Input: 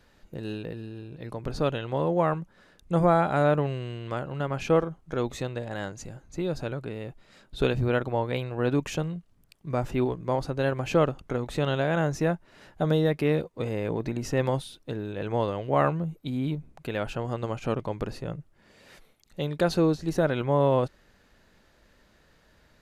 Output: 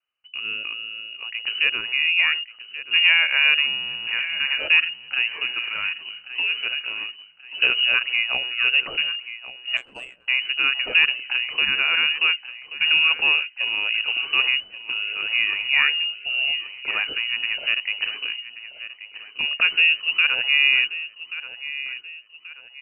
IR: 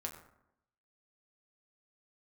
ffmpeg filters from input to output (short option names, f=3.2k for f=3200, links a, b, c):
-filter_complex "[0:a]agate=range=-29dB:threshold=-48dB:ratio=16:detection=peak,aecho=1:1:1132|2264|3396|4528:0.2|0.0778|0.0303|0.0118,acrossover=split=670|950[a][b][c];[b]asoftclip=type=tanh:threshold=-32dB[d];[a][d][c]amix=inputs=3:normalize=0,lowpass=f=2.6k:t=q:w=0.5098,lowpass=f=2.6k:t=q:w=0.6013,lowpass=f=2.6k:t=q:w=0.9,lowpass=f=2.6k:t=q:w=2.563,afreqshift=-3000,asettb=1/sr,asplit=3[e][f][g];[e]atrim=end=9.774[h];[f]atrim=start=9.77:end=10.28,asetpts=PTS-STARTPTS,afade=t=in:d=0.004:c=qsin,afade=t=out:st=0.506:d=0.004:c=qsin,adynamicsmooth=sensitivity=0.5:basefreq=550[i];[g]atrim=start=10.276[j];[h][i]acrossfade=d=0.004:c1=hsin:c2=qsin[k];[k][j]acrossfade=d=0.004:c1=qsin:c2=hsin,volume=5dB"